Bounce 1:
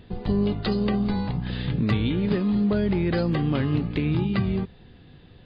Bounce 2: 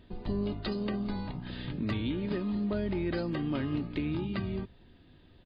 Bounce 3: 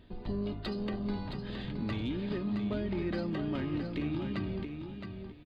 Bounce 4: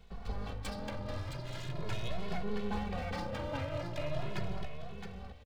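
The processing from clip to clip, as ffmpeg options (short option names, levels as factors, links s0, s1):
-af "bandreject=f=60:t=h:w=6,bandreject=f=120:t=h:w=6,aecho=1:1:3.2:0.38,volume=0.398"
-filter_complex "[0:a]asplit=2[s0][s1];[s1]asoftclip=type=tanh:threshold=0.0126,volume=0.473[s2];[s0][s2]amix=inputs=2:normalize=0,aecho=1:1:668|1336|2004:0.447|0.0938|0.0197,volume=0.631"
-filter_complex "[0:a]acrossover=split=170[s0][s1];[s1]aeval=exprs='abs(val(0))':c=same[s2];[s0][s2]amix=inputs=2:normalize=0,asplit=2[s3][s4];[s4]adelay=2.3,afreqshift=0.41[s5];[s3][s5]amix=inputs=2:normalize=1,volume=1.58"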